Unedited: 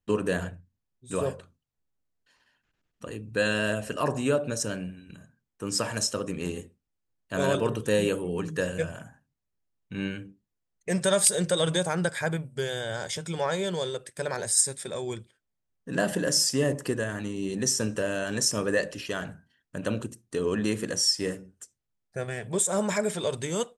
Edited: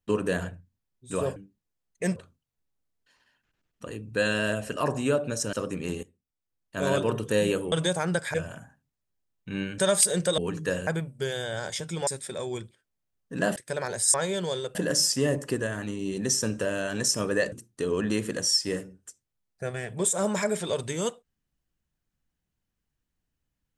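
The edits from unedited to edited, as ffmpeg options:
-filter_complex "[0:a]asplit=15[s0][s1][s2][s3][s4][s5][s6][s7][s8][s9][s10][s11][s12][s13][s14];[s0]atrim=end=1.362[s15];[s1]atrim=start=10.218:end=11.022[s16];[s2]atrim=start=1.358:end=4.732[s17];[s3]atrim=start=6.098:end=6.6,asetpts=PTS-STARTPTS,afade=t=out:st=0.498:d=0.004:c=hsin:silence=0.199526[s18];[s4]atrim=start=6.6:end=8.292,asetpts=PTS-STARTPTS,afade=t=in:d=0.91:silence=0.199526[s19];[s5]atrim=start=11.618:end=12.242[s20];[s6]atrim=start=8.778:end=10.222[s21];[s7]atrim=start=11.018:end=11.622[s22];[s8]atrim=start=8.288:end=8.782[s23];[s9]atrim=start=12.238:end=13.442[s24];[s10]atrim=start=14.628:end=16.122[s25];[s11]atrim=start=14.048:end=14.632[s26];[s12]atrim=start=13.438:end=14.052[s27];[s13]atrim=start=16.118:end=18.892[s28];[s14]atrim=start=20.058[s29];[s15][s16]acrossfade=d=0.004:c1=hsin:c2=hsin[s30];[s30][s17]acrossfade=d=0.004:c1=hsin:c2=hsin[s31];[s18][s19]concat=n=2:v=0:a=1[s32];[s31][s32]acrossfade=d=0.004:c1=hsin:c2=hsin[s33];[s33][s20]acrossfade=d=0.004:c1=hsin:c2=hsin[s34];[s34][s21]acrossfade=d=0.004:c1=hsin:c2=hsin[s35];[s35][s22]acrossfade=d=0.004:c1=hsin:c2=hsin[s36];[s36][s23]acrossfade=d=0.004:c1=hsin:c2=hsin[s37];[s37][s24]acrossfade=d=0.004:c1=hsin:c2=hsin[s38];[s38][s25]acrossfade=d=0.004:c1=hsin:c2=hsin[s39];[s39][s26]acrossfade=d=0.004:c1=hsin:c2=hsin[s40];[s40][s27]acrossfade=d=0.004:c1=hsin:c2=hsin[s41];[s41][s28]acrossfade=d=0.004:c1=hsin:c2=hsin[s42];[s42][s29]acrossfade=d=0.004:c1=hsin:c2=hsin"

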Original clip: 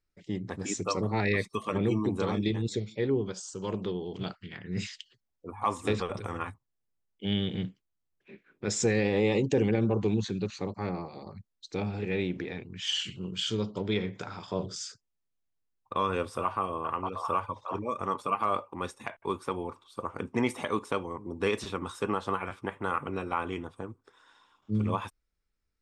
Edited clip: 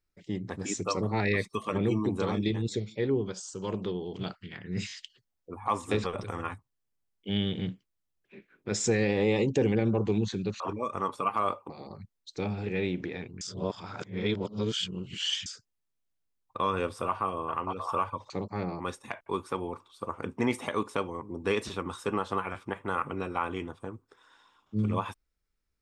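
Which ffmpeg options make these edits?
-filter_complex "[0:a]asplit=9[s0][s1][s2][s3][s4][s5][s6][s7][s8];[s0]atrim=end=4.892[s9];[s1]atrim=start=4.868:end=4.892[s10];[s2]atrim=start=4.868:end=10.562[s11];[s3]atrim=start=17.658:end=18.762[s12];[s4]atrim=start=11.058:end=12.772[s13];[s5]atrim=start=12.768:end=14.822,asetpts=PTS-STARTPTS,areverse[s14];[s6]atrim=start=14.818:end=17.662[s15];[s7]atrim=start=10.558:end=11.062[s16];[s8]atrim=start=18.758[s17];[s9][s10]acrossfade=d=0.004:c1=hsin:c2=hsin[s18];[s18][s11]acrossfade=d=0.004:c1=hsin:c2=hsin[s19];[s19][s12]acrossfade=d=0.004:c1=hsin:c2=hsin[s20];[s20][s13]acrossfade=d=0.004:c1=hsin:c2=hsin[s21];[s21][s14]acrossfade=d=0.004:c1=hsin:c2=hsin[s22];[s22][s15]acrossfade=d=0.004:c1=hsin:c2=hsin[s23];[s23][s16]acrossfade=d=0.004:c1=hsin:c2=hsin[s24];[s24][s17]acrossfade=d=0.004:c1=hsin:c2=hsin"

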